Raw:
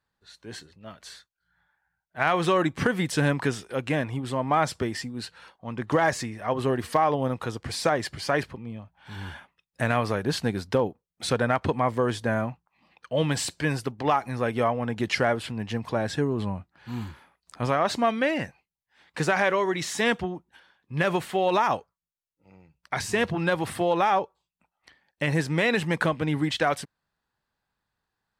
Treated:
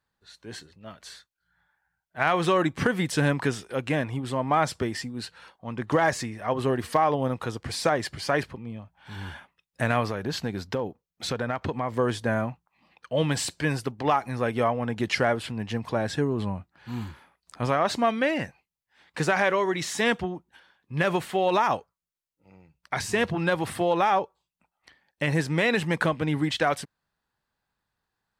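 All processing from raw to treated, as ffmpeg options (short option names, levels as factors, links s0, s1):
-filter_complex "[0:a]asettb=1/sr,asplit=3[s0][s1][s2];[s0]atrim=end=10.064[s3];[s1]atrim=start=10.06:end=11.94,asetpts=PTS-STARTPTS,afade=t=in:d=0.004:c=qsin,afade=t=out:st=1.876:d=0.004:c=qsin,equalizer=f=9200:w=6.9:g=-14.5,acompressor=threshold=0.0447:ratio=2:attack=3.2:release=140:knee=1:detection=peak[s4];[s2]atrim=start=11.936[s5];[s3][s4]acrossfade=d=0.004:c1=hsin:c2=qsin[s6];[s6][s5]acrossfade=d=0.004:c1=qsin:c2=hsin"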